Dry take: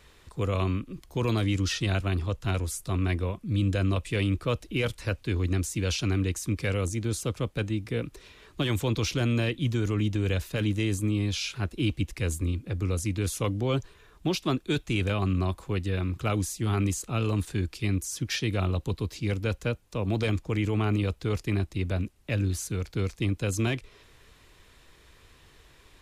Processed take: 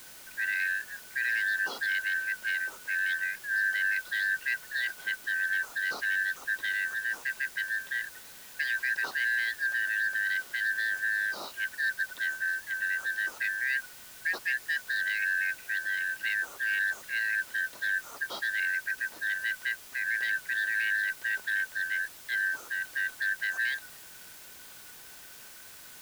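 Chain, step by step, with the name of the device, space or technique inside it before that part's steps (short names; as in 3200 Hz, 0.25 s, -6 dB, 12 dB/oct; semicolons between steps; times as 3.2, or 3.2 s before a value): split-band scrambled radio (four-band scrambler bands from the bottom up 4123; BPF 320–3000 Hz; white noise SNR 17 dB); gain -3 dB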